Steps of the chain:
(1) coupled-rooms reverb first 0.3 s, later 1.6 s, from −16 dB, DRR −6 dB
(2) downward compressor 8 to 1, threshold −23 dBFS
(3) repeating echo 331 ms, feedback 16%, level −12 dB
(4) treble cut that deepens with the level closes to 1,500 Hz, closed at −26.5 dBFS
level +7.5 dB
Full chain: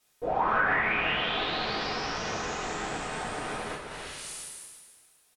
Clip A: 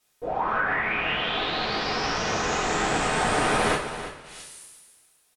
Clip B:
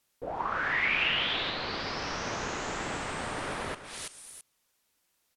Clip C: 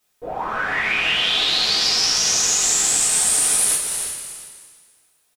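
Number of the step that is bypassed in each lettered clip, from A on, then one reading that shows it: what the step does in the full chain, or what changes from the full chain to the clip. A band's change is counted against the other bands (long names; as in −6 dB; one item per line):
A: 2, average gain reduction 5.0 dB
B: 1, 4 kHz band +3.5 dB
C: 4, 8 kHz band +25.5 dB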